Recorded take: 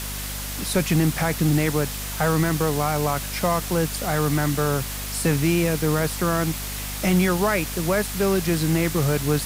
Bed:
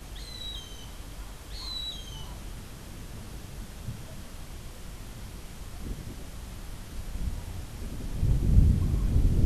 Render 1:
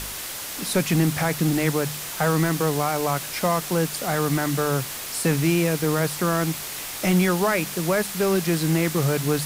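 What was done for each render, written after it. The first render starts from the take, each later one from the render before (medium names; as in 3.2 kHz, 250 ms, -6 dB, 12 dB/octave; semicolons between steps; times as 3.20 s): de-hum 50 Hz, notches 5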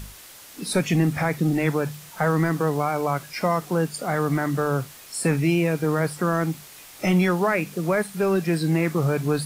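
noise print and reduce 12 dB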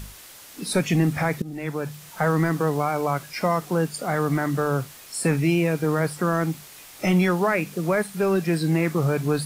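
1.42–2.11 s: fade in, from -18.5 dB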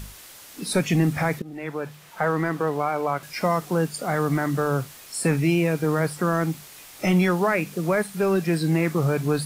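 1.39–3.23 s: tone controls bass -7 dB, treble -8 dB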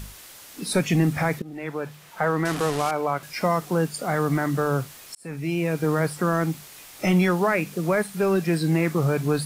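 2.45–2.91 s: one-bit delta coder 64 kbps, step -24 dBFS; 5.15–5.84 s: fade in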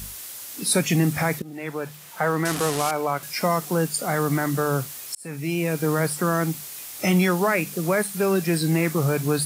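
high-pass 44 Hz; treble shelf 5.3 kHz +11 dB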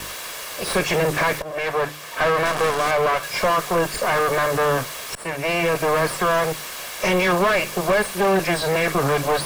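comb filter that takes the minimum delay 1.8 ms; overdrive pedal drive 25 dB, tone 1.8 kHz, clips at -10 dBFS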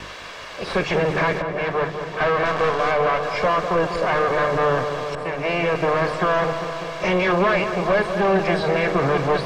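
distance through air 160 m; filtered feedback delay 198 ms, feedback 77%, low-pass 2 kHz, level -8 dB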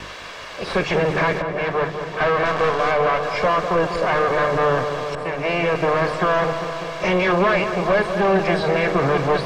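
trim +1 dB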